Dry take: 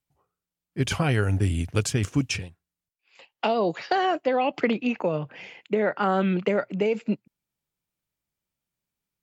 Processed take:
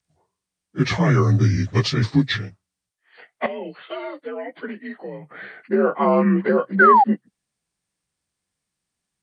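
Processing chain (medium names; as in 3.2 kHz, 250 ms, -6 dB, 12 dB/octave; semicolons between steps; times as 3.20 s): frequency axis rescaled in octaves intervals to 86%; 3.46–5.31 s: pre-emphasis filter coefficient 0.8; 6.79–7.04 s: painted sound fall 760–1600 Hz -19 dBFS; trim +7 dB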